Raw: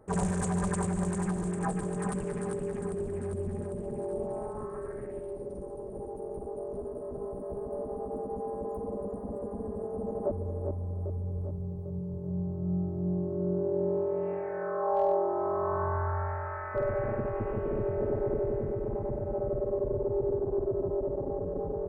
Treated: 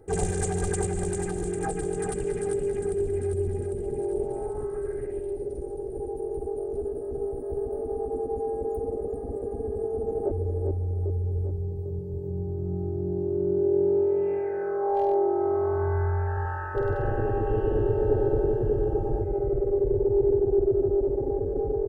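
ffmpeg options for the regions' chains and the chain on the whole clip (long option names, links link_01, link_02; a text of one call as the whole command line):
ffmpeg -i in.wav -filter_complex "[0:a]asettb=1/sr,asplit=3[link_01][link_02][link_03];[link_01]atrim=end=16.274[link_04];[link_02]atrim=start=16.27:end=19.23,asetpts=PTS-STARTPTS,afade=type=in:duration=0.004:curve=qsin,afade=type=out:start_time=2.956:duration=0.004:curve=qsin,asuperstop=centerf=2200:order=12:qfactor=3.2,equalizer=frequency=2400:width=0.57:gain=5.5,aecho=1:1:99|183:0.596|0.501,atrim=end_sample=130536[link_05];[link_03]atrim=start=19.226[link_06];[link_04][link_05]acrossfade=duration=0.004:curve1=hsin:curve2=qsin[link_07];[link_07][link_06]acrossfade=duration=0.004:curve1=qsin:curve2=hsin,equalizer=frequency=1100:width=2:gain=-14.5,aecho=1:1:2.5:0.78,volume=4dB" out.wav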